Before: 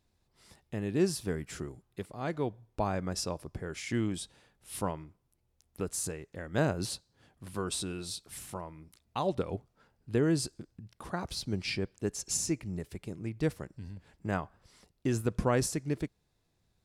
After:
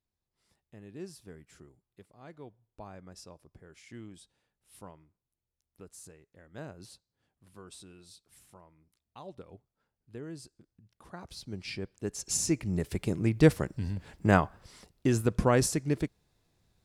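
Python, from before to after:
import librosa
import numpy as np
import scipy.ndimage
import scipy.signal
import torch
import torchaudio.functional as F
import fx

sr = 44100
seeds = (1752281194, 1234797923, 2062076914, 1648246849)

y = fx.gain(x, sr, db=fx.line((10.49, -15.0), (12.07, -2.0), (13.02, 10.0), (14.4, 10.0), (15.15, 3.5)))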